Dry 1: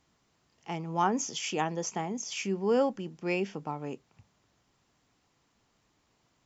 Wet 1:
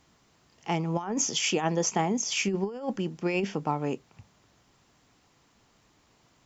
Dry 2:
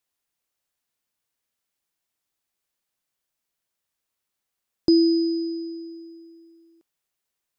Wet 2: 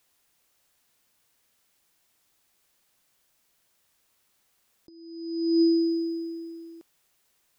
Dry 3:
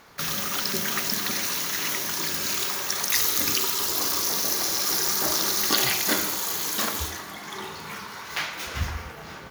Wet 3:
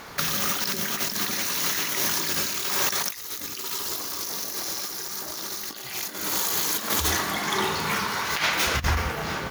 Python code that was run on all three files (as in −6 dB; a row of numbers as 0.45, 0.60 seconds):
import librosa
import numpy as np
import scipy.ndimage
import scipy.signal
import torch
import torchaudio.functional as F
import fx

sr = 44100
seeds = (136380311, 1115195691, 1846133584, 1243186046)

y = fx.over_compress(x, sr, threshold_db=-31.0, ratio=-0.5)
y = F.gain(torch.from_numpy(y), 5.0).numpy()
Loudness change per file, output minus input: +3.0, −4.0, −1.5 LU